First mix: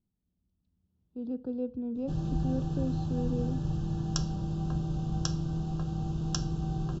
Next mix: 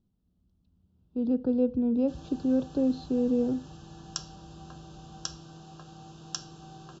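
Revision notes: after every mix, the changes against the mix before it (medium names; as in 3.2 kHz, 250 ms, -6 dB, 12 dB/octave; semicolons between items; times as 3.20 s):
speech +8.5 dB; background: add high-pass 1.1 kHz 6 dB/octave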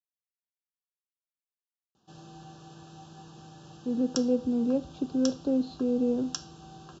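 speech: entry +2.70 s; master: add high-pass 120 Hz 6 dB/octave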